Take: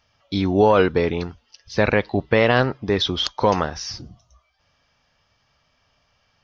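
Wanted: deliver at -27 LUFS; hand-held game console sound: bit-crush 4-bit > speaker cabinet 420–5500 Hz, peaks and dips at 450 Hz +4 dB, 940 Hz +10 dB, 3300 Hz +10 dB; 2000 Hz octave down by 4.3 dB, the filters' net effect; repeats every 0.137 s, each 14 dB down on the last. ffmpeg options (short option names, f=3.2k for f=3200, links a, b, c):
-af "equalizer=f=2k:t=o:g=-7,aecho=1:1:137|274:0.2|0.0399,acrusher=bits=3:mix=0:aa=0.000001,highpass=420,equalizer=f=450:t=q:w=4:g=4,equalizer=f=940:t=q:w=4:g=10,equalizer=f=3.3k:t=q:w=4:g=10,lowpass=f=5.5k:w=0.5412,lowpass=f=5.5k:w=1.3066,volume=-8.5dB"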